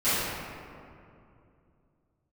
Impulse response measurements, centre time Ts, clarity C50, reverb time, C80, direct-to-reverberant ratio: 159 ms, −4.5 dB, 2.6 s, −2.0 dB, −18.0 dB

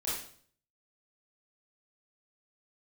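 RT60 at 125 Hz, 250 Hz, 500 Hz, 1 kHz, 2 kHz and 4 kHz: 0.75, 0.60, 0.55, 0.50, 0.50, 0.50 seconds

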